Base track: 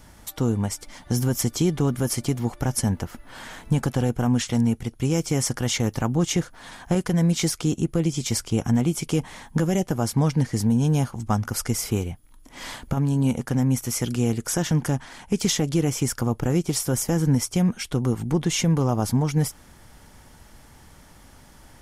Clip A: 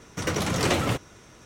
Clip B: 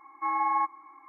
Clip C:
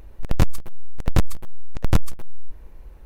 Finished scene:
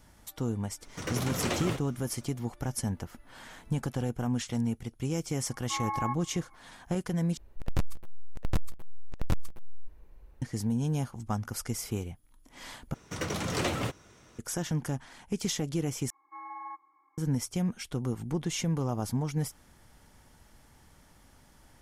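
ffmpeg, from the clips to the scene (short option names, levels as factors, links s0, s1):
-filter_complex "[1:a]asplit=2[s0][s1];[2:a]asplit=2[s2][s3];[0:a]volume=0.355,asplit=4[s4][s5][s6][s7];[s4]atrim=end=7.374[s8];[3:a]atrim=end=3.05,asetpts=PTS-STARTPTS,volume=0.282[s9];[s5]atrim=start=10.416:end=12.944[s10];[s1]atrim=end=1.45,asetpts=PTS-STARTPTS,volume=0.473[s11];[s6]atrim=start=14.386:end=16.104[s12];[s3]atrim=end=1.08,asetpts=PTS-STARTPTS,volume=0.168[s13];[s7]atrim=start=17.176[s14];[s0]atrim=end=1.45,asetpts=PTS-STARTPTS,volume=0.398,afade=t=in:d=0.02,afade=t=out:st=1.43:d=0.02,adelay=800[s15];[s2]atrim=end=1.08,asetpts=PTS-STARTPTS,volume=0.447,afade=t=in:d=0.004:c=hsin,afade=t=out:st=1.076:d=0.004:c=hsin,adelay=5480[s16];[s8][s9]acrossfade=d=0.004:c1=hsin:c2=hsin[s17];[s17][s10]acrossfade=d=0.004:c1=hsin:c2=hsin[s18];[s18][s11]acrossfade=d=0.004:c1=hsin:c2=hsin[s19];[s19][s12]acrossfade=d=0.004:c1=hsin:c2=hsin[s20];[s20][s13]acrossfade=d=0.004:c1=hsin:c2=hsin[s21];[s21][s14]acrossfade=d=0.004:c1=hsin:c2=hsin[s22];[s22][s15][s16]amix=inputs=3:normalize=0"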